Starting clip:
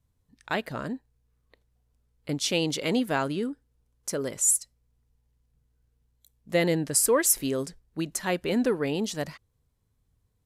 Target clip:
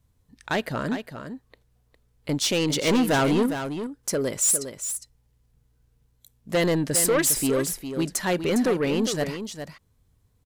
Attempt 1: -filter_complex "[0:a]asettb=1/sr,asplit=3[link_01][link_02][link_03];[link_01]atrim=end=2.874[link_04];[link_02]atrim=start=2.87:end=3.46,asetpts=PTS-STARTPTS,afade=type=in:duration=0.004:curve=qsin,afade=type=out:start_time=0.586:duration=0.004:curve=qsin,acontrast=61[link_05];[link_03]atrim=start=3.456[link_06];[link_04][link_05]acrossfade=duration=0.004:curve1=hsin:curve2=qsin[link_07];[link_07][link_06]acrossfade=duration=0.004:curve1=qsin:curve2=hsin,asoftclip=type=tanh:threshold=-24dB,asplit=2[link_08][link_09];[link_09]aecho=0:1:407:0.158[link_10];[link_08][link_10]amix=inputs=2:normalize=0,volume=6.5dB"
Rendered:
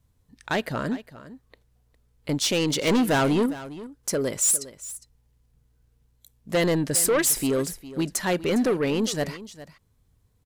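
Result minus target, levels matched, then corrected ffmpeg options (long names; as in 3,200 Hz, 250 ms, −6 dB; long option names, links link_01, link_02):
echo-to-direct −7 dB
-filter_complex "[0:a]asettb=1/sr,asplit=3[link_01][link_02][link_03];[link_01]atrim=end=2.874[link_04];[link_02]atrim=start=2.87:end=3.46,asetpts=PTS-STARTPTS,afade=type=in:duration=0.004:curve=qsin,afade=type=out:start_time=0.586:duration=0.004:curve=qsin,acontrast=61[link_05];[link_03]atrim=start=3.456[link_06];[link_04][link_05]acrossfade=duration=0.004:curve1=hsin:curve2=qsin[link_07];[link_07][link_06]acrossfade=duration=0.004:curve1=qsin:curve2=hsin,asoftclip=type=tanh:threshold=-24dB,asplit=2[link_08][link_09];[link_09]aecho=0:1:407:0.355[link_10];[link_08][link_10]amix=inputs=2:normalize=0,volume=6.5dB"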